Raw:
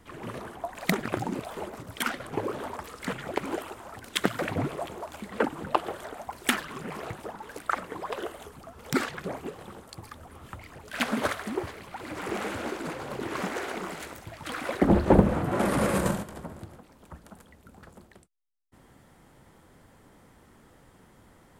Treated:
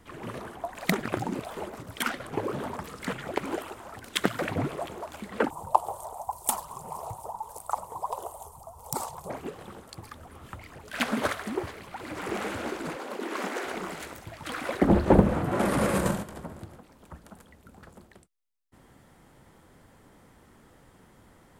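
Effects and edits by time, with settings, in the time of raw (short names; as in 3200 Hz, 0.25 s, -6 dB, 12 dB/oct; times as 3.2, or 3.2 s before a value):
2.52–3.04 bell 160 Hz +10.5 dB 1.2 oct
5.5–9.3 EQ curve 110 Hz 0 dB, 280 Hz -18 dB, 950 Hz +9 dB, 1600 Hz -24 dB, 3700 Hz -11 dB, 8500 Hz +7 dB
12.96–13.65 steep high-pass 210 Hz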